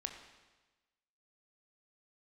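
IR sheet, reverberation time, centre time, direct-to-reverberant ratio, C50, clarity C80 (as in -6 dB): 1.2 s, 28 ms, 4.0 dB, 6.5 dB, 8.0 dB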